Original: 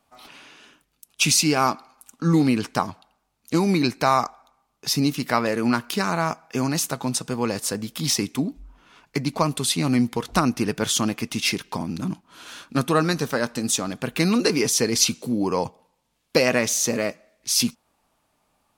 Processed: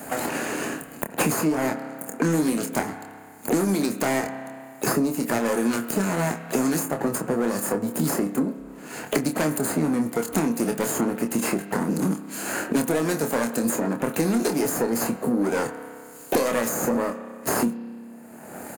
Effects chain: minimum comb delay 0.43 ms; HPF 190 Hz 12 dB/oct; band shelf 3400 Hz -14 dB; in parallel at -3 dB: compressor 5:1, threshold -32 dBFS, peak gain reduction 15 dB; on the sum: spring tank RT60 1 s, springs 30 ms, chirp 25 ms, DRR 12.5 dB; soft clip -14 dBFS, distortion -17 dB; harmoniser +7 st -15 dB; doubler 26 ms -6.5 dB; three-band squash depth 100%

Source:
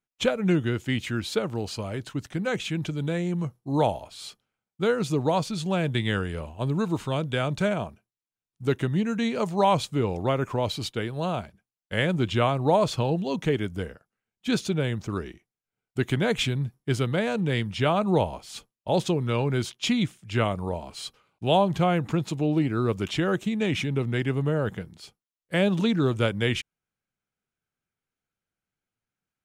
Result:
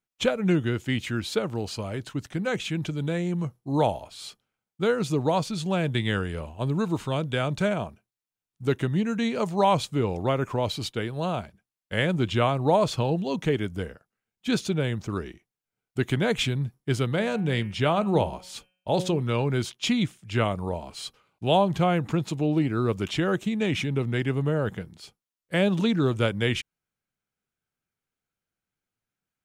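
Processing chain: 17.16–19.22 de-hum 183.4 Hz, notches 17

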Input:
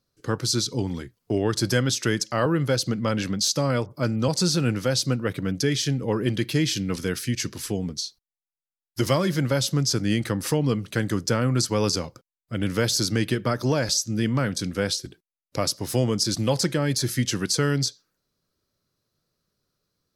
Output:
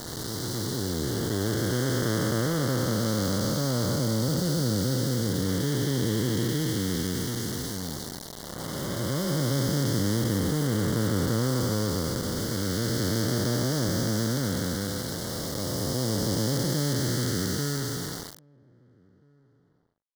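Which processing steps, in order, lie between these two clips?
time blur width 1.01 s; 3.98–5.49 bell 1700 Hz -5 dB 1.8 oct; requantised 6-bit, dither none; Butterworth band-stop 2500 Hz, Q 2.5; outdoor echo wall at 280 m, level -30 dB; gain +2 dB

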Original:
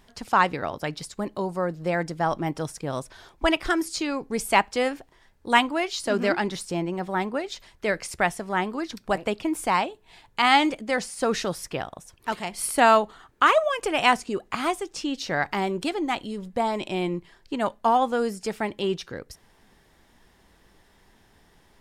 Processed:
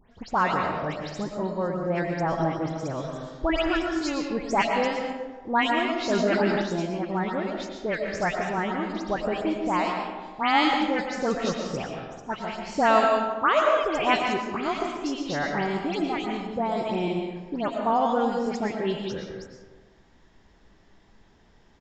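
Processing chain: low shelf 490 Hz +4 dB; dispersion highs, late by 0.133 s, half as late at 2900 Hz; on a send at -2 dB: reverb RT60 1.4 s, pre-delay 75 ms; on the sum: downsampling 16000 Hz; 6.1–6.62 fast leveller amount 50%; gain -4.5 dB

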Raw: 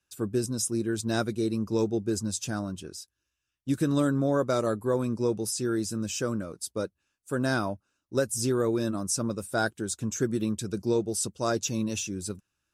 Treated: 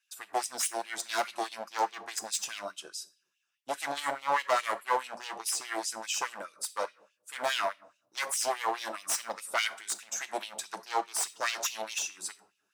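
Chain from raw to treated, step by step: one-sided fold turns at -26.5 dBFS; shoebox room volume 730 m³, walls furnished, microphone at 0.74 m; LFO high-pass sine 4.8 Hz 690–3000 Hz

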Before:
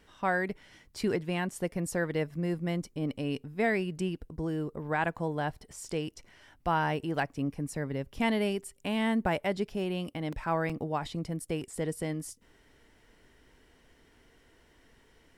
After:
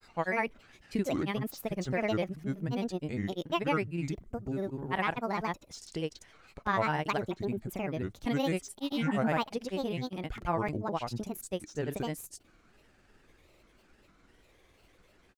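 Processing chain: spectral repair 8.88–9.2, 630–1900 Hz both; grains, pitch spread up and down by 7 st

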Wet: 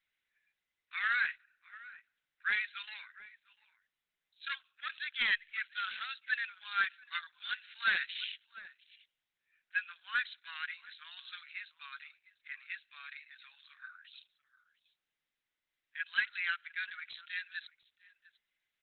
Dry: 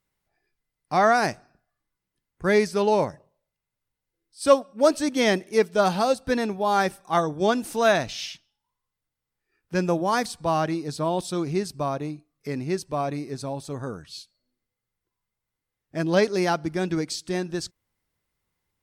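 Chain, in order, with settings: soft clip -10 dBFS, distortion -20 dB; Chebyshev high-pass 1500 Hz, order 5; hard clip -23 dBFS, distortion -22 dB; outdoor echo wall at 120 m, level -17 dB; gain +1.5 dB; Opus 8 kbps 48000 Hz

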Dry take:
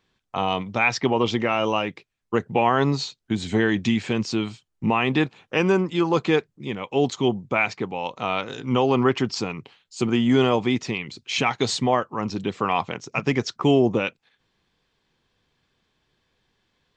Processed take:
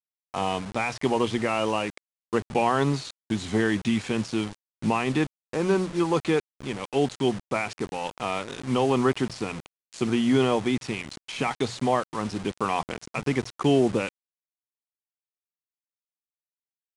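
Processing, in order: 5.25–6 median filter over 15 samples; de-esser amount 90%; high shelf 6300 Hz +9.5 dB; notches 60/120/180 Hz; backlash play -36.5 dBFS; bit-crush 6-bit; downsampling 22050 Hz; gain -2.5 dB

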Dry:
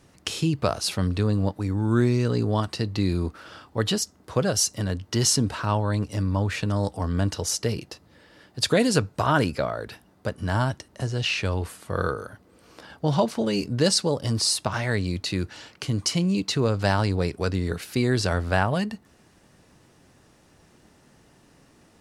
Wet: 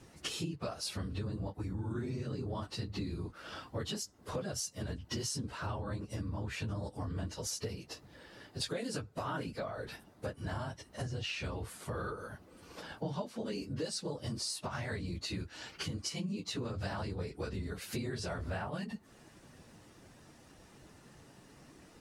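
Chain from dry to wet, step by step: phase scrambler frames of 50 ms; compressor 5:1, threshold -36 dBFS, peak gain reduction 19.5 dB; gain -1 dB

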